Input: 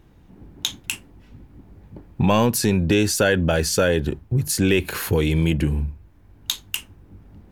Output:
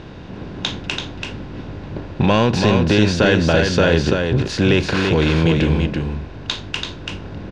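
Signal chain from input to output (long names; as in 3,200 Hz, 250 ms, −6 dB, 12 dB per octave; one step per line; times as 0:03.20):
compressor on every frequency bin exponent 0.6
low-pass filter 5,000 Hz 24 dB per octave
single-tap delay 335 ms −4.5 dB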